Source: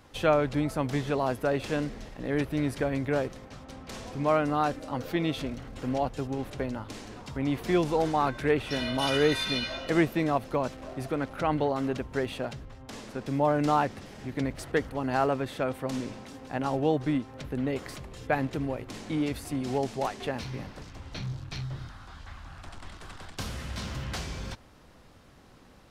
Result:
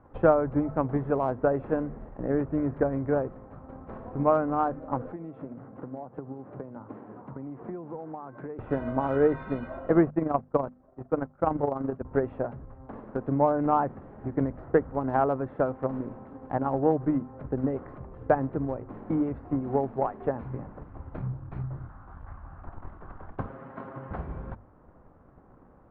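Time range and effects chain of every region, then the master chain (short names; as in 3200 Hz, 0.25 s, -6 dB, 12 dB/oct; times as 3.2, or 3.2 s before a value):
5.12–8.59 compressor 8:1, threshold -35 dBFS + HPF 120 Hz 24 dB/oct + air absorption 220 m
10.1–12.05 gate -33 dBFS, range -17 dB + AM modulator 24 Hz, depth 35%
23.46–24.11 HPF 240 Hz + air absorption 110 m + comb 7.4 ms, depth 68%
whole clip: LPF 1300 Hz 24 dB/oct; notches 50/100/150/200/250 Hz; transient shaper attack +7 dB, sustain 0 dB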